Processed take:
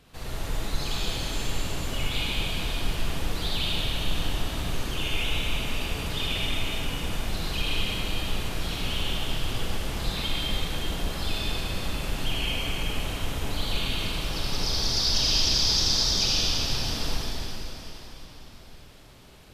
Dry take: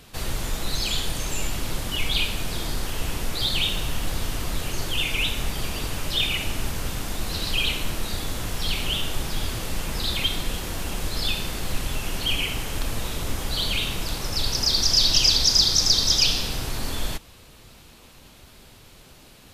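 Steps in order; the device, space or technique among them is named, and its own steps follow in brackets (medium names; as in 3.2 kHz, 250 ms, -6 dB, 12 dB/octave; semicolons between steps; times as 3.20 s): swimming-pool hall (reverberation RT60 3.9 s, pre-delay 45 ms, DRR -6 dB; treble shelf 4.6 kHz -7 dB); trim -8 dB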